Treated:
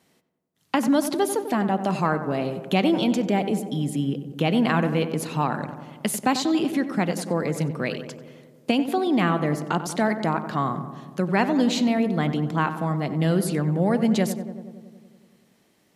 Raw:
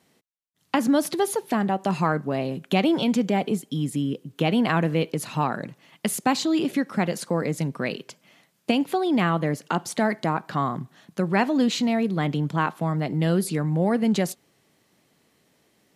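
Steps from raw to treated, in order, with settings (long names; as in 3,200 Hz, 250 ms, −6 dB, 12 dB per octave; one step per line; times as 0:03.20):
feedback echo with a low-pass in the loop 93 ms, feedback 73%, low-pass 1,700 Hz, level −10 dB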